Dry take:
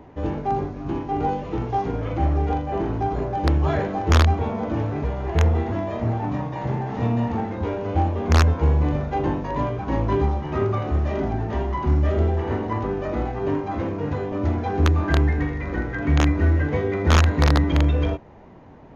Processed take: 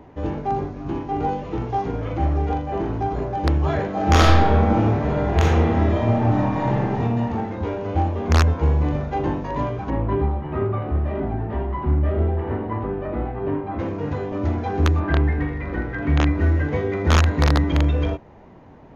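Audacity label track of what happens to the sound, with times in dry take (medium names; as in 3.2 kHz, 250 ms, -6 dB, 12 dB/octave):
3.910000	6.840000	reverb throw, RT60 1.3 s, DRR -4.5 dB
9.900000	13.790000	distance through air 380 m
14.990000	16.390000	low-pass 3.1 kHz -> 5.1 kHz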